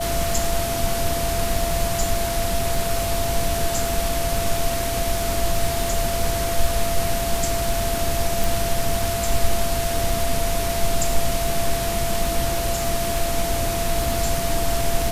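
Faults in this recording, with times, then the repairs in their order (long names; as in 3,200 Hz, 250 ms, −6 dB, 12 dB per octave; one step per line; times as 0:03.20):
surface crackle 50 per second −27 dBFS
whistle 680 Hz −25 dBFS
0:08.44: click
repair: click removal
notch filter 680 Hz, Q 30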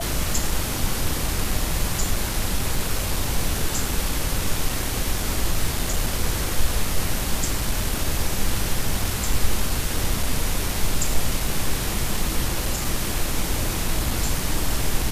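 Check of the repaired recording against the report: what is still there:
none of them is left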